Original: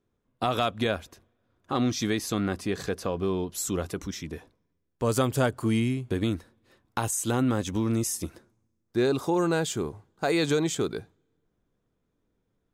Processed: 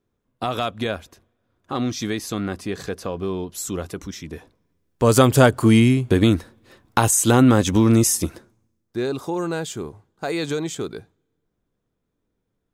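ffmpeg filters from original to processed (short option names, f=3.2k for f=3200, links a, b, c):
-af "volume=11dB,afade=t=in:st=4.24:d=1.06:silence=0.334965,afade=t=out:st=8.06:d=0.92:silence=0.266073"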